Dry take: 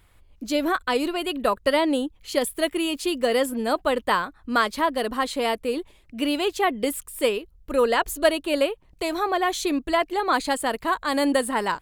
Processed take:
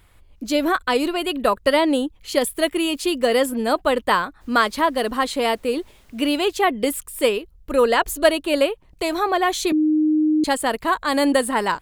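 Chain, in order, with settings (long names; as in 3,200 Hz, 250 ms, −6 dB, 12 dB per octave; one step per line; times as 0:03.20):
0:04.40–0:06.35: background noise pink −61 dBFS
0:09.72–0:10.44: beep over 308 Hz −18 dBFS
level +3.5 dB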